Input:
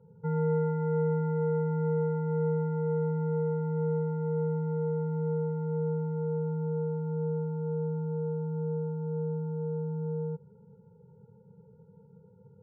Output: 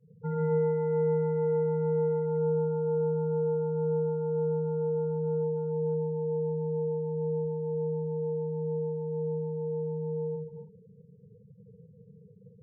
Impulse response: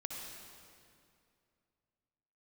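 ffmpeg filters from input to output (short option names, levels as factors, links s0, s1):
-filter_complex "[1:a]atrim=start_sample=2205,afade=t=out:st=0.34:d=0.01,atrim=end_sample=15435,asetrate=37485,aresample=44100[s0];[0:a][s0]afir=irnorm=-1:irlink=0,afftfilt=real='re*gte(hypot(re,im),0.00562)':imag='im*gte(hypot(re,im),0.00562)':win_size=1024:overlap=0.75,volume=1.19"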